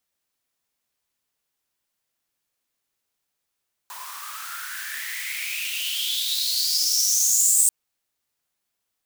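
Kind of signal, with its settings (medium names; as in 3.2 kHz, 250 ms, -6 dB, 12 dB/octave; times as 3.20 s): swept filtered noise white, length 3.79 s highpass, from 950 Hz, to 8.3 kHz, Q 8.2, exponential, gain ramp +16 dB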